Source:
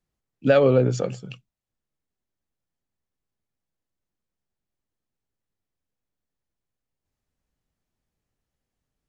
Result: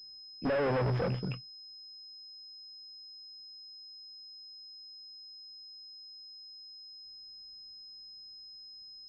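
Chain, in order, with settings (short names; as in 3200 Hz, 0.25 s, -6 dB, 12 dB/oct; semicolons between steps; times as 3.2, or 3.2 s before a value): tube stage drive 34 dB, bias 0.4; pulse-width modulation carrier 5100 Hz; gain +6 dB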